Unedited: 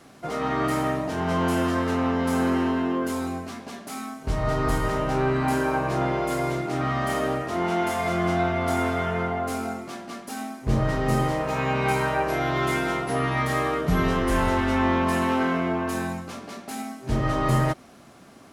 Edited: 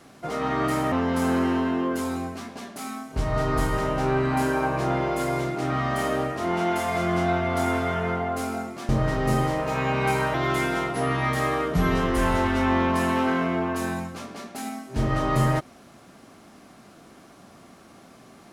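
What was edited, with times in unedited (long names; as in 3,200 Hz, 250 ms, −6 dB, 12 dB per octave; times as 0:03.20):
0:00.92–0:02.03: remove
0:10.00–0:10.70: remove
0:12.15–0:12.47: remove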